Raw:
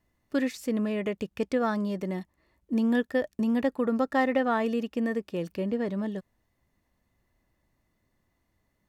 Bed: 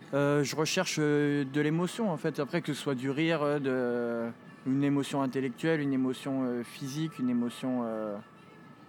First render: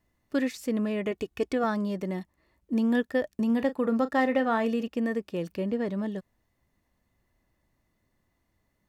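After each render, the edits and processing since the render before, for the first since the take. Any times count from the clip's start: 1.11–1.64 comb 2.7 ms, depth 58%; 3.46–4.88 doubler 35 ms -13 dB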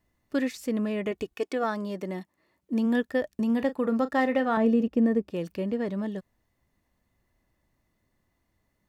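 1.33–2.85 HPF 340 Hz -> 110 Hz; 4.57–5.31 tilt shelf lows +7.5 dB, about 840 Hz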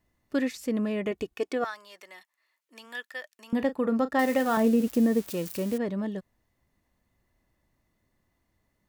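1.64–3.53 HPF 1400 Hz; 4.19–5.78 switching spikes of -28.5 dBFS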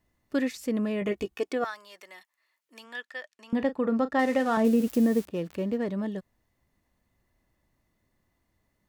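1–1.41 doubler 15 ms -5.5 dB; 2.84–4.65 air absorption 55 m; 5.25–5.89 median filter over 9 samples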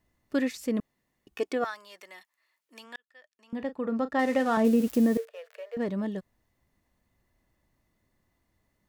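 0.8–1.27 room tone; 2.96–4.42 fade in; 5.17–5.77 rippled Chebyshev high-pass 440 Hz, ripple 9 dB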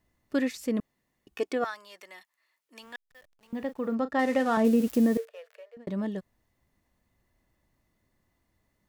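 2.82–3.95 level-crossing sampler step -57.5 dBFS; 5.03–5.87 fade out equal-power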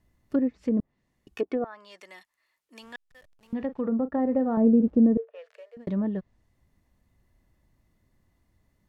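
treble ducked by the level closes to 650 Hz, closed at -25 dBFS; low shelf 220 Hz +8.5 dB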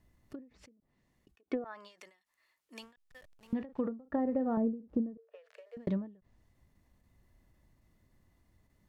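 compressor 6:1, threshold -28 dBFS, peak gain reduction 12 dB; ending taper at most 150 dB/s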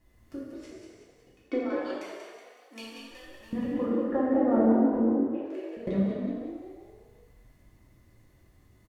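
frequency-shifting echo 0.186 s, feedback 49%, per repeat +48 Hz, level -6 dB; non-linear reverb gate 0.43 s falling, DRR -7 dB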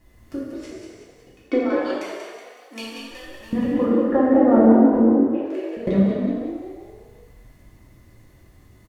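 gain +9 dB; limiter -3 dBFS, peak gain reduction 1 dB

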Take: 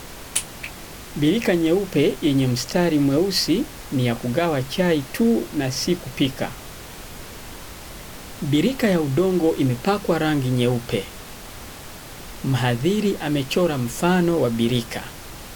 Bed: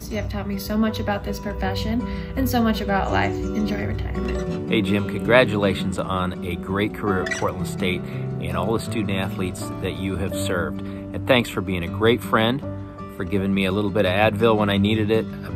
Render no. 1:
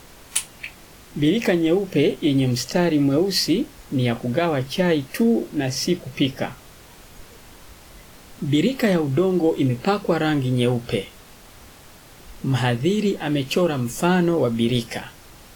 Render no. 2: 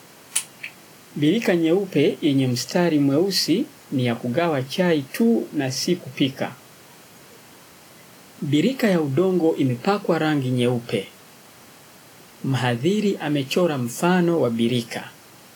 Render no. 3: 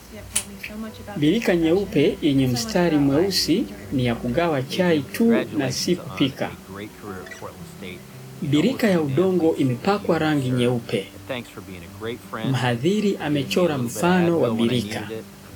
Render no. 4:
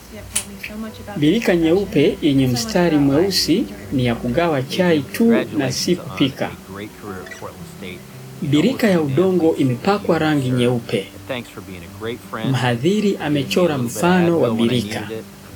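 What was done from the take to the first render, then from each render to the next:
noise print and reduce 8 dB
HPF 120 Hz 24 dB/oct; notch 3600 Hz, Q 16
add bed -12.5 dB
gain +3.5 dB; limiter -1 dBFS, peak gain reduction 1.5 dB

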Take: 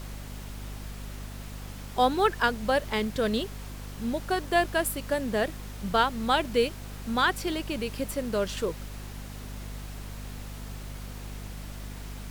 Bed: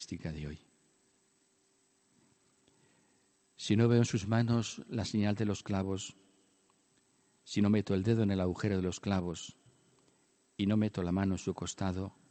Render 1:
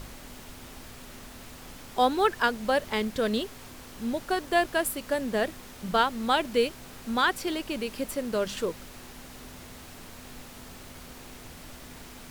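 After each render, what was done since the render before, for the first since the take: de-hum 50 Hz, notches 4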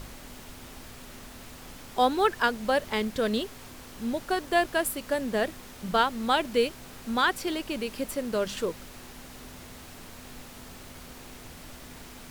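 nothing audible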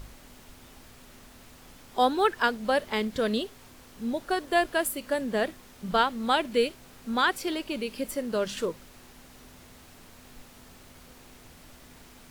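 noise print and reduce 6 dB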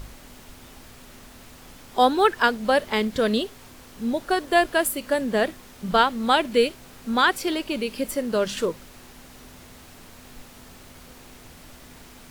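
gain +5 dB

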